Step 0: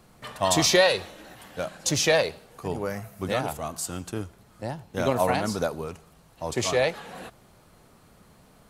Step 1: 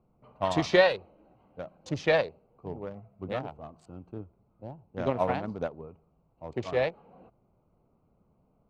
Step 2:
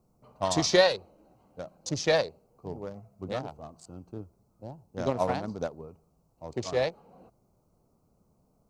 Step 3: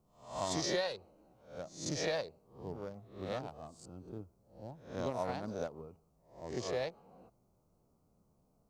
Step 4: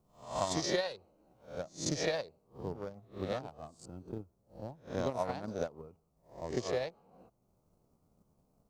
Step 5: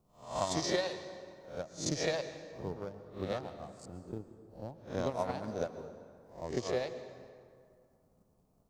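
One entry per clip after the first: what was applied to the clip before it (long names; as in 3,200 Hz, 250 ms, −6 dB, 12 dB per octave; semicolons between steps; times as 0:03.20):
adaptive Wiener filter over 25 samples; low-pass filter 3,000 Hz 12 dB per octave; expander for the loud parts 1.5 to 1, over −38 dBFS
high shelf with overshoot 3,900 Hz +11.5 dB, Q 1.5
peak hold with a rise ahead of every peak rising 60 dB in 0.45 s; floating-point word with a short mantissa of 6 bits; downward compressor 3 to 1, threshold −27 dBFS, peak gain reduction 10 dB; level −6 dB
transient designer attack +8 dB, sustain −4 dB
dense smooth reverb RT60 2.2 s, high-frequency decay 0.6×, pre-delay 105 ms, DRR 11 dB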